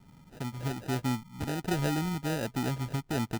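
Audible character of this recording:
phaser sweep stages 8, 1.3 Hz, lowest notch 470–2,700 Hz
aliases and images of a low sample rate 1,100 Hz, jitter 0%

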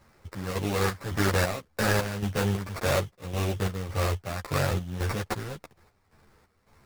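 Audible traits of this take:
a buzz of ramps at a fixed pitch in blocks of 8 samples
chopped level 1.8 Hz, depth 65%, duty 60%
aliases and images of a low sample rate 3,200 Hz, jitter 20%
a shimmering, thickened sound

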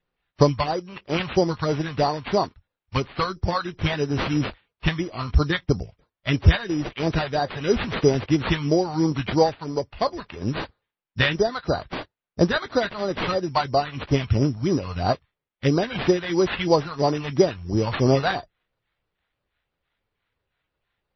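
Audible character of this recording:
phaser sweep stages 2, 3 Hz, lowest notch 320–2,700 Hz
aliases and images of a low sample rate 5,400 Hz, jitter 0%
MP3

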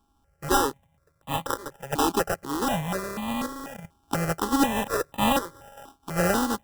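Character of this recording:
a buzz of ramps at a fixed pitch in blocks of 32 samples
chopped level 0.52 Hz, depth 60%, duty 80%
aliases and images of a low sample rate 2,200 Hz, jitter 0%
notches that jump at a steady rate 4.1 Hz 540–1,500 Hz

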